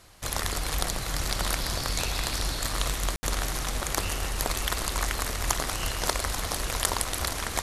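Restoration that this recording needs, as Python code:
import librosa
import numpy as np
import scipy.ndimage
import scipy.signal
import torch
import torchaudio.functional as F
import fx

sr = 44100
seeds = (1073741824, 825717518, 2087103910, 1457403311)

y = fx.fix_ambience(x, sr, seeds[0], print_start_s=0.0, print_end_s=0.5, start_s=3.16, end_s=3.23)
y = fx.fix_echo_inverse(y, sr, delay_ms=837, level_db=-10.5)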